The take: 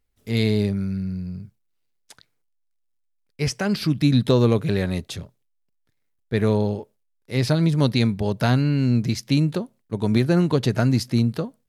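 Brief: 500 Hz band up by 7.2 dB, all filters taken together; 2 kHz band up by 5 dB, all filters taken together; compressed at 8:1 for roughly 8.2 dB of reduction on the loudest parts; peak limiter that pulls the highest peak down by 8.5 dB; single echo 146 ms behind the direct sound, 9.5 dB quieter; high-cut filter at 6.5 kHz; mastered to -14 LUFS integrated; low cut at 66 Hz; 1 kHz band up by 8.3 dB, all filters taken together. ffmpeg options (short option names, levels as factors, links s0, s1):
-af "highpass=66,lowpass=6500,equalizer=f=500:t=o:g=7,equalizer=f=1000:t=o:g=7.5,equalizer=f=2000:t=o:g=3.5,acompressor=threshold=0.158:ratio=8,alimiter=limit=0.224:level=0:latency=1,aecho=1:1:146:0.335,volume=3.35"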